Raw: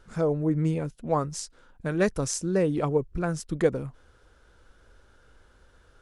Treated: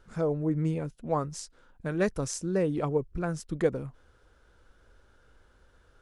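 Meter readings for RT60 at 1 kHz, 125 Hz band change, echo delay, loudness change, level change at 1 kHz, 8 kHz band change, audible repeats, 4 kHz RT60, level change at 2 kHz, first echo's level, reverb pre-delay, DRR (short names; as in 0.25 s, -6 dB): none, -3.0 dB, none, -3.0 dB, -3.0 dB, -5.0 dB, none, none, -3.5 dB, none, none, none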